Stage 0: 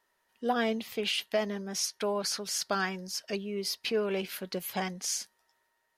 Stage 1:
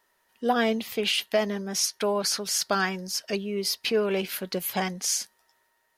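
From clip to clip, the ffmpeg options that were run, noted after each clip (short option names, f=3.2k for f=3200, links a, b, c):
-af "highshelf=f=11k:g=5,volume=5dB"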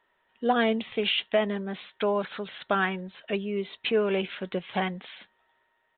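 -af "aresample=8000,aresample=44100"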